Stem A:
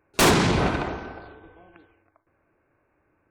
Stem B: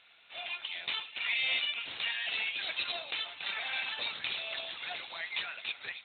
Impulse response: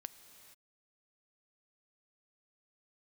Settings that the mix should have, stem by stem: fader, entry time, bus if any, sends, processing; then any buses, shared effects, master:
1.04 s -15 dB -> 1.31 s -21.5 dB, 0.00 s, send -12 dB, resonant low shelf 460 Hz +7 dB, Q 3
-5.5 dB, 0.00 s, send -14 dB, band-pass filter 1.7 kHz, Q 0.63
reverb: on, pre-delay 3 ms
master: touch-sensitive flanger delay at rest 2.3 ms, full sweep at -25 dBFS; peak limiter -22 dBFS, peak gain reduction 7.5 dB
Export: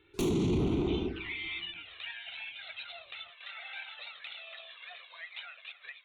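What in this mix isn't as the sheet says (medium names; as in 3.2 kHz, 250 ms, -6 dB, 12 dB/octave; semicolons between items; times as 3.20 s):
stem A -15.0 dB -> -4.0 dB; stem B: send -14 dB -> -7 dB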